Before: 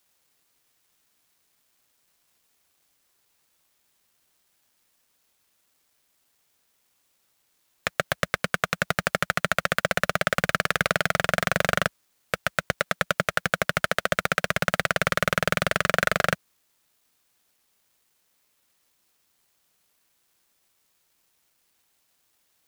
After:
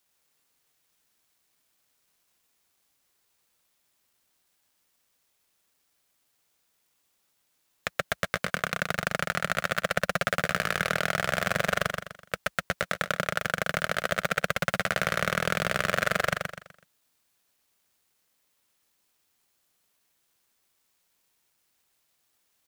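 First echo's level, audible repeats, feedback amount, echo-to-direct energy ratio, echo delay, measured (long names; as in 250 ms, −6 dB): −5.0 dB, 4, 34%, −4.5 dB, 125 ms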